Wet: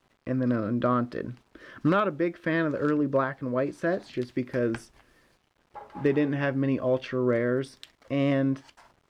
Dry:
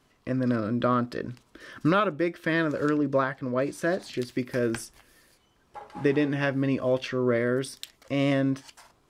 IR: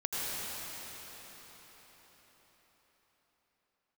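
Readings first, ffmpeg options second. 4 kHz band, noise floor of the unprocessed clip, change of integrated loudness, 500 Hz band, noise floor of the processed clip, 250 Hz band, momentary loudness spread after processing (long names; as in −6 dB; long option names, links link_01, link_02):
−5.5 dB, −65 dBFS, −0.5 dB, −0.5 dB, −69 dBFS, 0.0 dB, 8 LU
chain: -af "acrusher=bits=9:mix=0:aa=0.000001,aemphasis=mode=reproduction:type=75kf,asoftclip=type=hard:threshold=-15dB"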